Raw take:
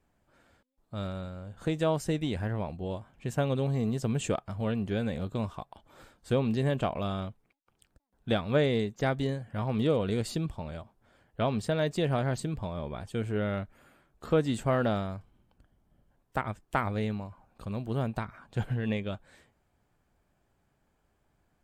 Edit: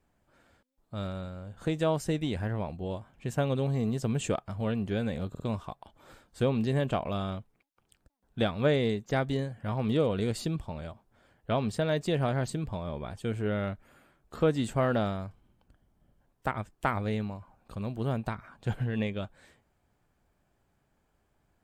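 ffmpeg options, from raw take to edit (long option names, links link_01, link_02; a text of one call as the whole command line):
ffmpeg -i in.wav -filter_complex "[0:a]asplit=3[link_01][link_02][link_03];[link_01]atrim=end=5.352[link_04];[link_02]atrim=start=5.298:end=5.352[link_05];[link_03]atrim=start=5.298[link_06];[link_04][link_05]acrossfade=duration=0.004:curve1=hsin:curve2=hsin[link_07];[link_07][link_06]acrossfade=duration=0.004:curve1=hsin:curve2=hsin" out.wav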